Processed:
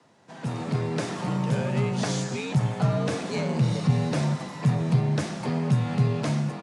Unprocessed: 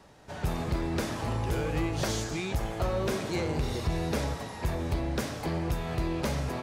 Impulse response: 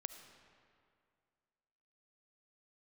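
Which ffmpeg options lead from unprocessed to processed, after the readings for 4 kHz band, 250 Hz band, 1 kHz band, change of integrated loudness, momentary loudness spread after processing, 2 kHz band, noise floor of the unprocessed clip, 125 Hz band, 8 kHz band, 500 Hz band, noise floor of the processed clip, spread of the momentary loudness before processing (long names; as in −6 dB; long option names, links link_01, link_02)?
+1.5 dB, +6.0 dB, +2.0 dB, +5.5 dB, 5 LU, +1.5 dB, −41 dBFS, +8.5 dB, +1.5 dB, +2.0 dB, −45 dBFS, 3 LU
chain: -af "asubboost=boost=2.5:cutoff=140,dynaudnorm=framelen=370:gausssize=3:maxgain=6dB,afreqshift=78,aresample=22050,aresample=44100,volume=-4dB" -ar 48000 -c:a libmp3lame -b:a 128k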